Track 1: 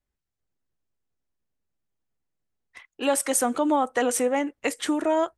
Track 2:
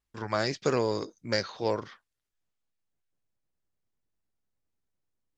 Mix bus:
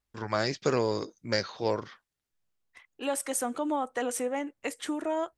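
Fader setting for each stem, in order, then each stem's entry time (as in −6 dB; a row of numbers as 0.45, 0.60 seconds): −7.5, 0.0 decibels; 0.00, 0.00 seconds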